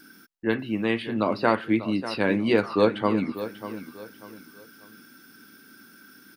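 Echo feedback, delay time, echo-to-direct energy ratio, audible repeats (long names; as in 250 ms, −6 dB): 33%, 592 ms, −12.0 dB, 3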